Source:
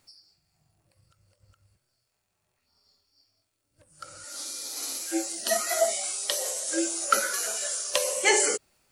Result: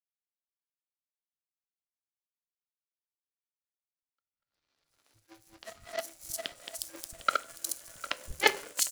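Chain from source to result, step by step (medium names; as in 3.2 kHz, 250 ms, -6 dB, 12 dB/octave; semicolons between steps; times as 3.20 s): backward echo that repeats 377 ms, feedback 68%, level -2 dB; de-hum 45.54 Hz, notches 39; power-law waveshaper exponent 3; three bands offset in time lows, mids, highs 160/520 ms, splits 160/4500 Hz; on a send at -15.5 dB: reverberation RT60 0.40 s, pre-delay 4 ms; on the sum: trim +7.5 dB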